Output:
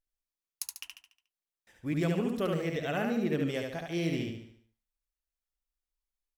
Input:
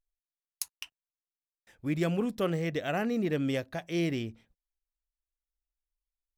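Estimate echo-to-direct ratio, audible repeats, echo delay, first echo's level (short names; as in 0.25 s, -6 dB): -2.5 dB, 5, 72 ms, -3.5 dB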